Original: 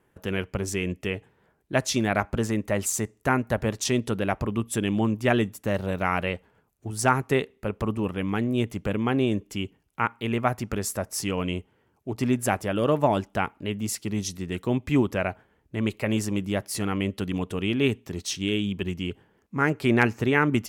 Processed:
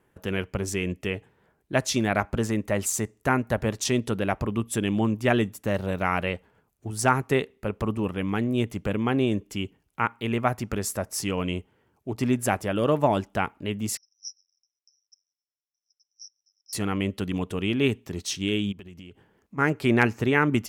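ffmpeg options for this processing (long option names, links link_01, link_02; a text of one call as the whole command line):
ffmpeg -i in.wav -filter_complex "[0:a]asettb=1/sr,asplit=3[link_01][link_02][link_03];[link_01]atrim=end=13.974[link_04];[link_02]atrim=start=13.97:end=16.73,asetpts=PTS-STARTPTS,afade=type=in:duration=0.004:curve=qsin,afade=type=out:start_time=2.756:duration=0.004:curve=qsin,asuperpass=centerf=5500:order=12:qfactor=7[link_05];[link_03]atrim=start=16.726[link_06];[link_04][link_05]acrossfade=duration=0.004:curve1=hsin:curve2=qsin[link_07];[link_07][link_06]acrossfade=duration=0.004:curve1=qsin:curve2=hsin,asplit=3[link_08][link_09][link_10];[link_08]afade=type=out:start_time=18.71:duration=0.02[link_11];[link_09]acompressor=threshold=-40dB:ratio=8:attack=3.2:release=140:knee=1:detection=peak,afade=type=in:start_time=18.71:duration=0.02,afade=type=out:start_time=19.57:duration=0.02[link_12];[link_10]afade=type=in:start_time=19.57:duration=0.02[link_13];[link_11][link_12][link_13]amix=inputs=3:normalize=0" out.wav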